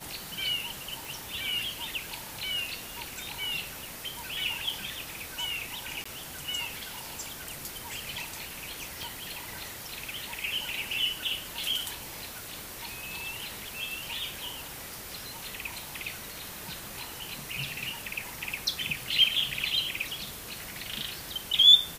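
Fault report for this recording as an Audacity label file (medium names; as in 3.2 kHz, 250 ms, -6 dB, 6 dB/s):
1.050000	1.050000	pop
6.040000	6.050000	dropout 15 ms
9.030000	9.030000	pop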